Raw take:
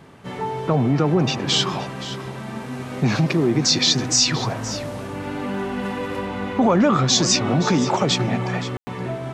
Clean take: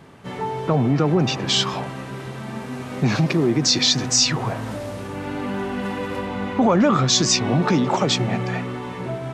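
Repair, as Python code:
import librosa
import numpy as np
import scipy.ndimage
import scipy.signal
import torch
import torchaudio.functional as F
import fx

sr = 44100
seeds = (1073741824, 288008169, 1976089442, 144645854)

y = fx.fix_ambience(x, sr, seeds[0], print_start_s=0.0, print_end_s=0.5, start_s=8.77, end_s=8.87)
y = fx.fix_echo_inverse(y, sr, delay_ms=521, level_db=-14.0)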